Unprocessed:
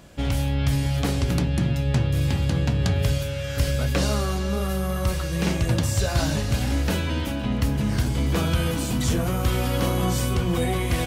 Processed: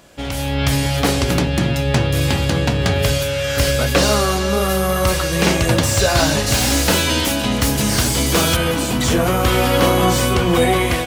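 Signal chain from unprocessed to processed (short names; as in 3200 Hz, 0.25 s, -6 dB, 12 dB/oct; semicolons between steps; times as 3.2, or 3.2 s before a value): tone controls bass -9 dB, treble +1 dB, from 6.46 s treble +14 dB, from 8.55 s treble -3 dB; AGC gain up to 9 dB; slew limiter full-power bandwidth 520 Hz; gain +3.5 dB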